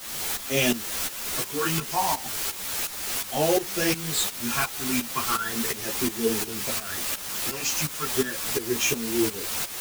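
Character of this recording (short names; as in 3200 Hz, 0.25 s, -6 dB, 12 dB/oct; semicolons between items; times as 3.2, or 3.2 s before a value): phasing stages 8, 0.36 Hz, lowest notch 480–1400 Hz; a quantiser's noise floor 6-bit, dither triangular; tremolo saw up 2.8 Hz, depth 80%; a shimmering, thickened sound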